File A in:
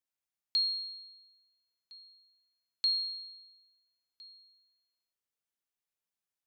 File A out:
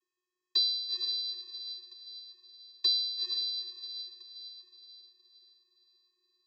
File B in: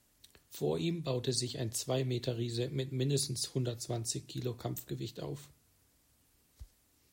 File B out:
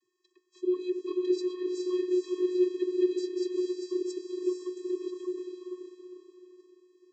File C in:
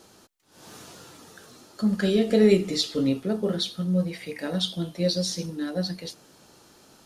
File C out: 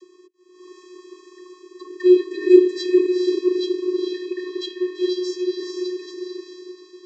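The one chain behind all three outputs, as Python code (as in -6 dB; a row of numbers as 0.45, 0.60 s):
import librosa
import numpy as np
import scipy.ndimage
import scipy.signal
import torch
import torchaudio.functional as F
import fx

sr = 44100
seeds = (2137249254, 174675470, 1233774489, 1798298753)

y = fx.echo_diffused(x, sr, ms=451, feedback_pct=42, wet_db=-3)
y = fx.vocoder(y, sr, bands=32, carrier='square', carrier_hz=363.0)
y = y * librosa.db_to_amplitude(4.5)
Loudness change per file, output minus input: +0.5, +4.5, +5.0 LU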